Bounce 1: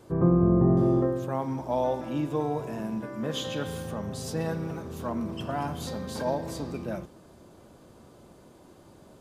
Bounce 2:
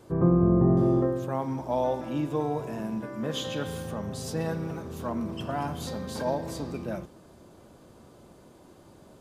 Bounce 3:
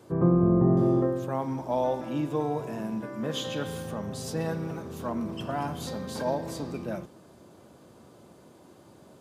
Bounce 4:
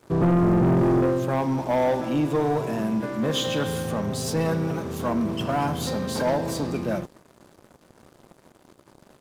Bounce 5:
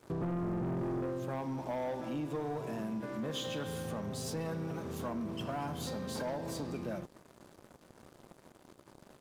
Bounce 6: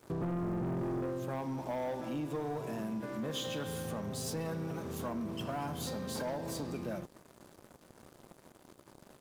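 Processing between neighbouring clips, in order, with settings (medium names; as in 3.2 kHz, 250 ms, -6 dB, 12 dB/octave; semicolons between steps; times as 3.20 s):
no audible change
high-pass 92 Hz
waveshaping leveller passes 3; trim -3.5 dB
compression 3:1, threshold -34 dBFS, peak gain reduction 12 dB; trim -4 dB
treble shelf 9 kHz +6 dB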